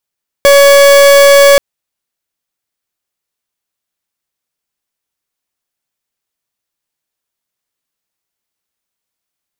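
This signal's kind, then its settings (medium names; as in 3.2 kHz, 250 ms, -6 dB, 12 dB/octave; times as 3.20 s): pulse 562 Hz, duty 42% -4 dBFS 1.13 s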